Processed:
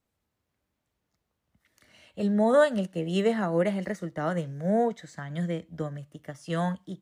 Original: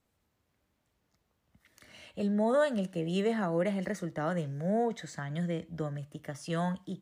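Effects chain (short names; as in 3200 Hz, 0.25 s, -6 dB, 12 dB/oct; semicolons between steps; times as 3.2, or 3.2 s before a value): upward expander 1.5:1, over -45 dBFS; gain +7 dB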